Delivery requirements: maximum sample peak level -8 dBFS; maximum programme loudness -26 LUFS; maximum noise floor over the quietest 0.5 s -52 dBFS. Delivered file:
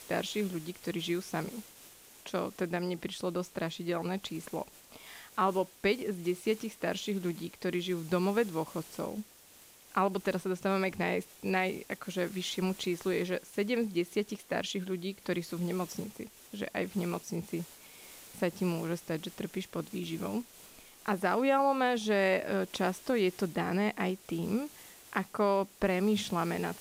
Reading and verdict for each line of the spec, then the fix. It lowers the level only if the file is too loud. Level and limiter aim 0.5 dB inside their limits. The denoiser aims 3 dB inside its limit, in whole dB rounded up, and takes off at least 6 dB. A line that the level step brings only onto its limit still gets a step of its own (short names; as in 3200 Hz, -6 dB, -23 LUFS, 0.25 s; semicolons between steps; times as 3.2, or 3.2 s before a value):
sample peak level -14.0 dBFS: OK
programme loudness -33.5 LUFS: OK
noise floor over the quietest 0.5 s -57 dBFS: OK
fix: none